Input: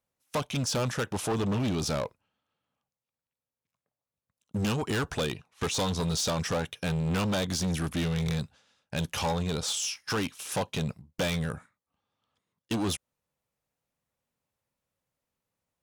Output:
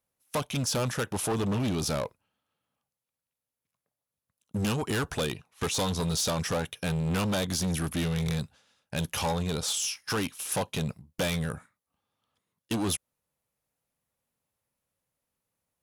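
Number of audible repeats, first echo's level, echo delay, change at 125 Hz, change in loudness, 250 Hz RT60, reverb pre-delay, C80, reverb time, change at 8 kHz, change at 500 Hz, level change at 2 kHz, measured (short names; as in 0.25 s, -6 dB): none, none, none, 0.0 dB, +0.5 dB, none, none, none, none, +2.0 dB, 0.0 dB, 0.0 dB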